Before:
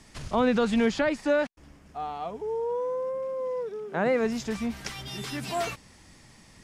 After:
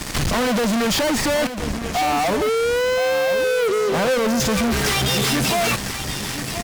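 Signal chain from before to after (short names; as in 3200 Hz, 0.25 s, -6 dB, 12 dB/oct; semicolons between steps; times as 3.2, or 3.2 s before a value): 2.02–4.41 elliptic band-stop 1300–5200 Hz; fuzz box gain 52 dB, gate -53 dBFS; echo 1.025 s -10.5 dB; gain -5.5 dB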